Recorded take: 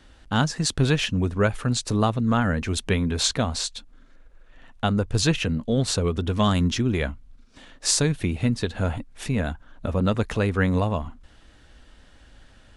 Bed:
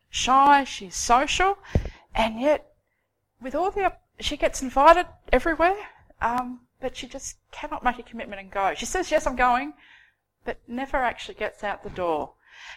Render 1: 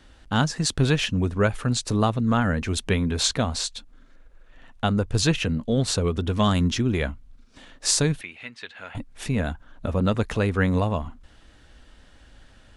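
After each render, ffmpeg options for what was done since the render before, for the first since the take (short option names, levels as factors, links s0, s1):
-filter_complex "[0:a]asettb=1/sr,asplit=3[s0][s1][s2];[s0]atrim=end=8.214[s3];[s1]atrim=start=8.21:end=8.95,asetpts=PTS-STARTPTS,afade=t=in:d=0.004:c=qsin,afade=t=out:st=0.736:d=0.004:c=qsin,bandpass=f=2200:t=q:w=1.5[s4];[s2]atrim=start=8.946[s5];[s3][s4]acrossfade=d=0.004:c1=hsin:c2=qsin[s6];[s6][s5]acrossfade=d=0.004:c1=qsin:c2=hsin"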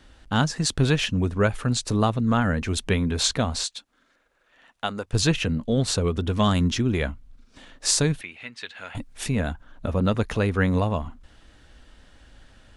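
-filter_complex "[0:a]asettb=1/sr,asplit=3[s0][s1][s2];[s0]atrim=end=3.634[s3];[s1]atrim=start=3.63:end=5.13,asetpts=PTS-STARTPTS,afade=t=in:d=0.004:c=qsin,afade=t=out:st=1.496:d=0.004:c=qsin,highpass=f=700:p=1[s4];[s2]atrim=start=5.126[s5];[s3][s4]acrossfade=d=0.004:c1=hsin:c2=qsin[s6];[s6][s5]acrossfade=d=0.004:c1=qsin:c2=hsin,asettb=1/sr,asplit=3[s7][s8][s9];[s7]atrim=end=8.574[s10];[s8]atrim=start=8.57:end=9.3,asetpts=PTS-STARTPTS,afade=t=in:d=0.004:c=qsin,afade=t=out:st=0.726:d=0.004:c=qsin,highshelf=f=3500:g=6.5[s11];[s9]atrim=start=9.296[s12];[s10][s11]acrossfade=d=0.004:c1=hsin:c2=qsin[s13];[s13][s12]acrossfade=d=0.004:c1=qsin:c2=hsin,asettb=1/sr,asplit=3[s14][s15][s16];[s14]atrim=end=9.874[s17];[s15]atrim=start=9.87:end=10.93,asetpts=PTS-STARTPTS,afade=t=in:d=0.004:c=qsin,afade=t=out:st=1.056:d=0.004:c=qsin,bandreject=f=7700:w=11[s18];[s16]atrim=start=10.926[s19];[s17][s18]acrossfade=d=0.004:c1=hsin:c2=qsin[s20];[s20][s19]acrossfade=d=0.004:c1=qsin:c2=hsin"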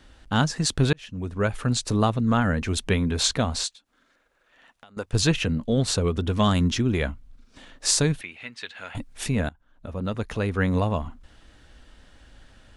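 -filter_complex "[0:a]asettb=1/sr,asplit=3[s0][s1][s2];[s0]atrim=end=3.734[s3];[s1]atrim=start=3.73:end=4.97,asetpts=PTS-STARTPTS,afade=t=in:d=0.004:c=qsin,afade=t=out:st=1.236:d=0.004:c=qsin,acompressor=threshold=0.00398:ratio=6:attack=3.2:release=140:knee=1:detection=peak[s4];[s2]atrim=start=4.966[s5];[s3][s4]acrossfade=d=0.004:c1=hsin:c2=qsin[s6];[s6][s5]acrossfade=d=0.004:c1=qsin:c2=hsin,asplit=3[s7][s8][s9];[s7]atrim=end=0.93,asetpts=PTS-STARTPTS,afade=t=out:st=0.926:d=0.004:c=hsin[s10];[s8]atrim=start=0.93:end=9.49,asetpts=PTS-STARTPTS,afade=t=in:d=0.72,afade=t=out:st=8.556:d=0.004:c=hsin:silence=0.0891251[s11];[s9]atrim=start=9.49,asetpts=PTS-STARTPTS,afade=t=in:d=1.4:silence=0.0891251[s12];[s10][s11][s12]concat=n=3:v=0:a=1"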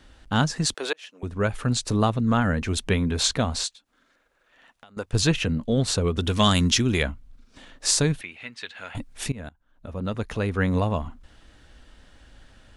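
-filter_complex "[0:a]asettb=1/sr,asplit=3[s0][s1][s2];[s0]atrim=end=0.744[s3];[s1]atrim=start=0.74:end=1.23,asetpts=PTS-STARTPTS,afade=t=in:d=0.004:c=qsin,afade=t=out:st=0.486:d=0.004:c=qsin,highpass=f=420:w=0.5412,highpass=f=420:w=1.3066[s4];[s2]atrim=start=1.226[s5];[s3][s4]acrossfade=d=0.004:c1=hsin:c2=qsin[s6];[s6][s5]acrossfade=d=0.004:c1=qsin:c2=hsin,asettb=1/sr,asplit=3[s7][s8][s9];[s7]atrim=end=6.184[s10];[s8]atrim=start=6.18:end=7.03,asetpts=PTS-STARTPTS,afade=t=in:d=0.004:c=qsin,afade=t=out:st=0.846:d=0.004:c=qsin,highshelf=f=2200:g=11[s11];[s9]atrim=start=7.026[s12];[s10][s11]acrossfade=d=0.004:c1=hsin:c2=qsin[s13];[s13][s12]acrossfade=d=0.004:c1=qsin:c2=hsin,asplit=2[s14][s15];[s14]atrim=end=9.32,asetpts=PTS-STARTPTS,afade=t=out:st=9.316:d=0.004:c=hsin:silence=0.105925[s16];[s15]atrim=start=9.32,asetpts=PTS-STARTPTS,afade=t=in:d=0.9:c=qsin:silence=0.105925[s17];[s16][s17]concat=n=2:v=0:a=1"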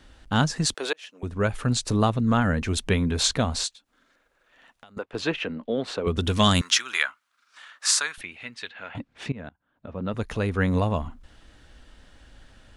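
-filter_complex "[0:a]asettb=1/sr,asplit=3[s0][s1][s2];[s0]atrim=end=4.984[s3];[s1]atrim=start=4.98:end=6.07,asetpts=PTS-STARTPTS,afade=t=in:d=0.004:c=qsin,afade=t=out:st=1.086:d=0.004:c=qsin,acrossover=split=250 3500:gain=0.0794 1 0.1[s4][s5][s6];[s4][s5][s6]amix=inputs=3:normalize=0[s7];[s2]atrim=start=6.066[s8];[s3][s7]acrossfade=d=0.004:c1=hsin:c2=qsin[s9];[s9][s8]acrossfade=d=0.004:c1=qsin:c2=hsin,asettb=1/sr,asplit=3[s10][s11][s12];[s10]atrim=end=6.614[s13];[s11]atrim=start=6.61:end=8.18,asetpts=PTS-STARTPTS,afade=t=in:d=0.004:c=qsin,afade=t=out:st=1.566:d=0.004:c=qsin,highpass=f=1300:t=q:w=2.5[s14];[s12]atrim=start=8.176[s15];[s13][s14]acrossfade=d=0.004:c1=hsin:c2=qsin[s16];[s16][s15]acrossfade=d=0.004:c1=qsin:c2=hsin,asplit=3[s17][s18][s19];[s17]afade=t=out:st=8.68:d=0.02[s20];[s18]highpass=110,lowpass=3100,afade=t=in:st=8.68:d=0.02,afade=t=out:st=10.12:d=0.02[s21];[s19]afade=t=in:st=10.12:d=0.02[s22];[s20][s21][s22]amix=inputs=3:normalize=0"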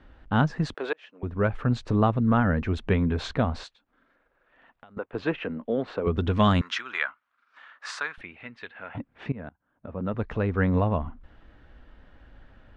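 -af "lowpass=1900"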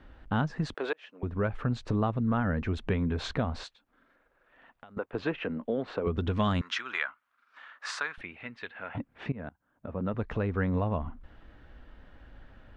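-af "acompressor=threshold=0.0355:ratio=2"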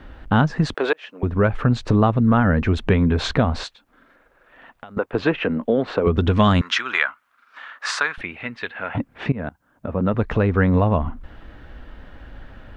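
-af "volume=3.76"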